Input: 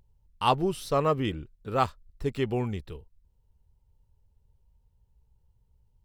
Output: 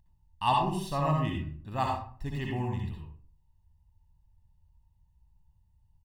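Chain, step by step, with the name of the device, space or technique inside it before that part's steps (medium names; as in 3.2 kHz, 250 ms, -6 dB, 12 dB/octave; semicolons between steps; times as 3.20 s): microphone above a desk (comb 1.1 ms, depth 84%; reverberation RT60 0.50 s, pre-delay 58 ms, DRR 0 dB); trim -7.5 dB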